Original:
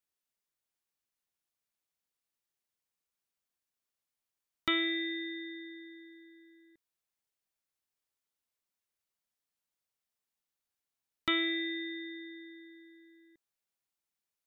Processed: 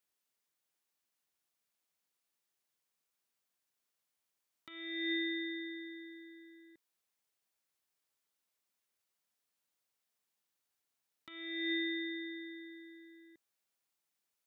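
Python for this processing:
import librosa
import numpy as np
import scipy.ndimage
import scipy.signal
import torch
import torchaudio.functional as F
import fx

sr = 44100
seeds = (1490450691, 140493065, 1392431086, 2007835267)

y = fx.highpass(x, sr, hz=150.0, slope=6)
y = fx.over_compress(y, sr, threshold_db=-37.0, ratio=-0.5)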